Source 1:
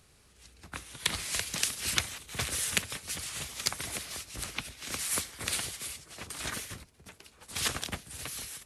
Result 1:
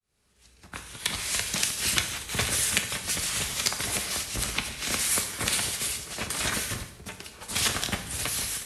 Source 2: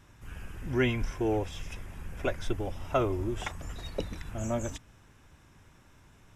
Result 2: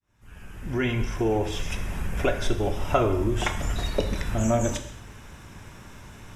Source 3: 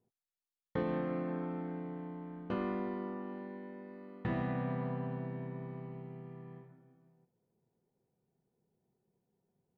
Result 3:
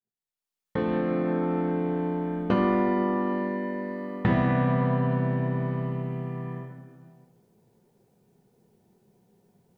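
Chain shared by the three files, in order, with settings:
opening faded in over 2.07 s; compressor 2:1, threshold -38 dBFS; non-linear reverb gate 0.26 s falling, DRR 5.5 dB; match loudness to -27 LUFS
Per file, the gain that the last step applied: +10.5, +13.0, +15.5 dB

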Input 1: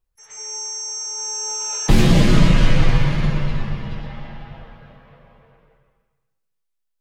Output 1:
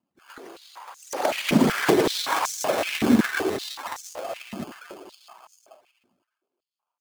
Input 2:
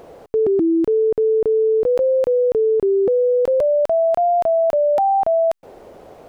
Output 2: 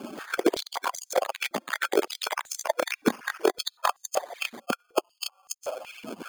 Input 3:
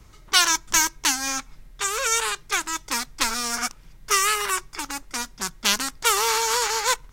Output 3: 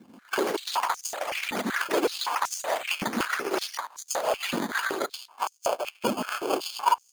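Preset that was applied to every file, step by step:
median-filter separation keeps percussive; high shelf 4900 Hz -12 dB; compressor 6:1, threshold -28 dBFS; thin delay 99 ms, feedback 80%, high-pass 5000 Hz, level -22 dB; sample-and-hold 23×; echoes that change speed 0.153 s, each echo +6 st, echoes 3; stepped high-pass 5.3 Hz 230–6300 Hz; normalise peaks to -6 dBFS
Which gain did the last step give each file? +10.5, +5.5, +3.0 dB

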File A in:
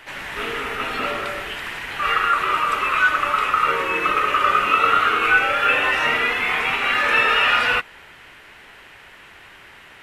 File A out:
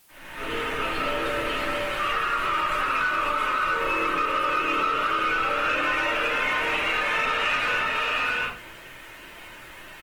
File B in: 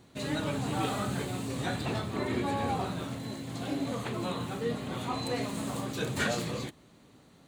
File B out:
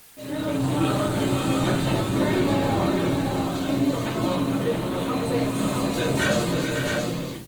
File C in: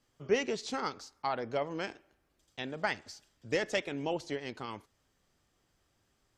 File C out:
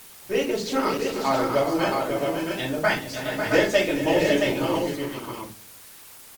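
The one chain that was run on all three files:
opening faded in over 0.61 s; notches 50/100/150/200 Hz; gate -52 dBFS, range -30 dB; notch 5400 Hz, Q 20; on a send: tapped delay 0.319/0.417/0.547/0.67 s -15.5/-12.5/-7/-5 dB; on the sum: shoebox room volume 140 m³, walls furnished, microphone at 2.7 m; in parallel at -11 dB: requantised 6-bit, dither triangular; on the sum: compressor 3:1, threshold -13 dBFS; soft clip -6.5 dBFS; Opus 20 kbps 48000 Hz; match loudness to -24 LUFS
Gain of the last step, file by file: -9.0, -1.0, +2.5 dB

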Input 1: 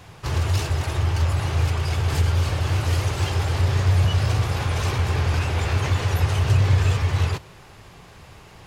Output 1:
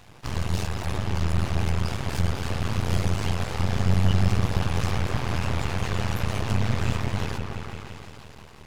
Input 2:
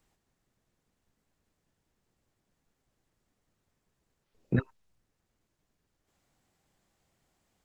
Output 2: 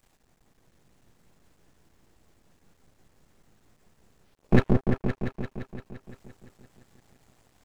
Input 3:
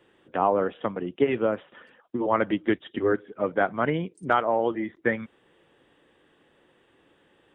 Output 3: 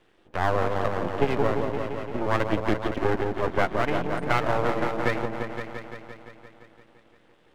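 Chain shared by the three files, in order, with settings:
repeats that get brighter 0.172 s, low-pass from 750 Hz, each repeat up 1 oct, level -3 dB; half-wave rectifier; match loudness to -27 LUFS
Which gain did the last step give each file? -1.5, +13.0, +2.5 dB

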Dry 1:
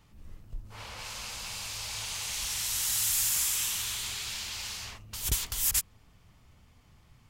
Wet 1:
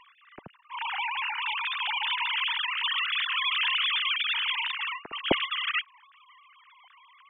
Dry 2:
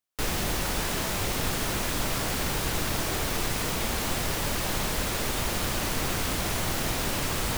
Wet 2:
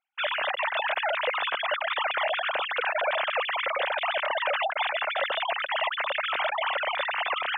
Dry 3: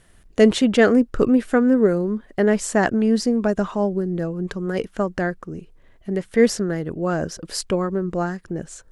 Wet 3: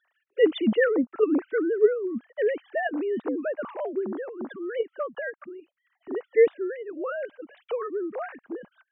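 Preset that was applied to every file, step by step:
sine-wave speech; match loudness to -27 LUFS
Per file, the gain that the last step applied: +3.5, 0.0, -6.5 dB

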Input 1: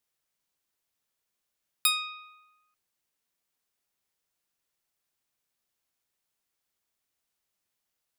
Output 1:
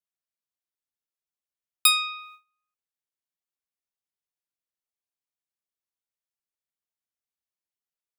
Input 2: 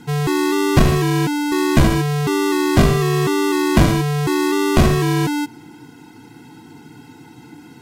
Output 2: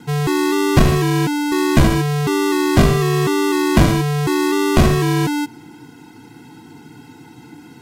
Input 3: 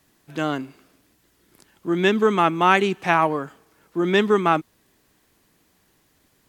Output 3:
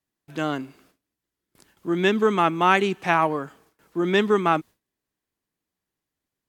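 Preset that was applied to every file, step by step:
gate with hold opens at -47 dBFS; normalise peaks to -3 dBFS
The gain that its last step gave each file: +6.5, +0.5, -1.5 dB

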